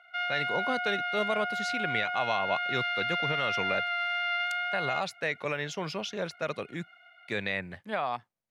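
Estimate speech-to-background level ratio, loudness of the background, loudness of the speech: -3.0 dB, -30.5 LUFS, -33.5 LUFS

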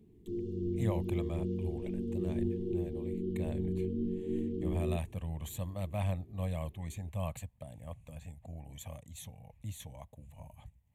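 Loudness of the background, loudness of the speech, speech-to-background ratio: -36.5 LUFS, -41.0 LUFS, -4.5 dB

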